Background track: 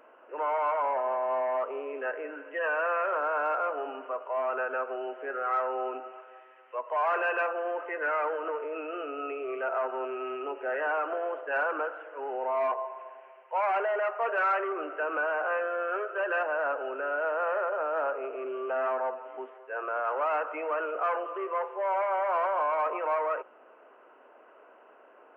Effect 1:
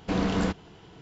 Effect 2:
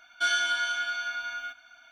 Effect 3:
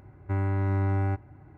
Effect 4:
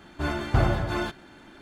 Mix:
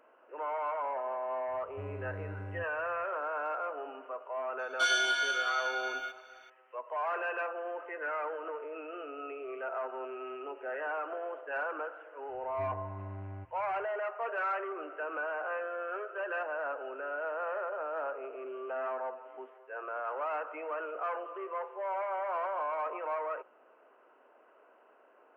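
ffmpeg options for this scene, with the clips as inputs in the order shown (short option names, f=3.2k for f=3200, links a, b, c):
-filter_complex "[3:a]asplit=2[a][b];[0:a]volume=-6.5dB[c];[b]lowpass=f=2.4k:p=1[d];[a]atrim=end=1.57,asetpts=PTS-STARTPTS,volume=-16dB,afade=t=in:d=0.004:c=hsin,afade=t=out:st=1.566:d=0.004:c=hsin,adelay=1480[e];[2:a]atrim=end=1.91,asetpts=PTS-STARTPTS,volume=-2dB,afade=t=in:d=0.004:c=hsin,afade=t=out:st=1.906:d=0.004:c=hsin,adelay=4590[f];[d]atrim=end=1.57,asetpts=PTS-STARTPTS,volume=-17dB,afade=t=in:d=0.004:c=hsin,afade=t=out:st=1.566:d=0.004:c=hsin,adelay=12290[g];[c][e][f][g]amix=inputs=4:normalize=0"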